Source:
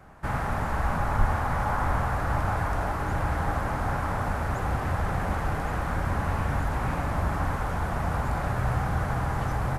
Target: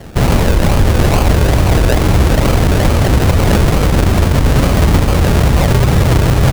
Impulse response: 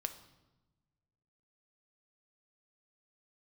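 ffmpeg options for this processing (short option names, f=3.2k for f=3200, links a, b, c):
-af "lowshelf=f=710:t=q:w=1.5:g=9.5,atempo=1.5,acrusher=samples=34:mix=1:aa=0.000001:lfo=1:lforange=20.4:lforate=2.3,tremolo=f=280:d=0.4,alimiter=level_in=14dB:limit=-1dB:release=50:level=0:latency=1,volume=-1dB"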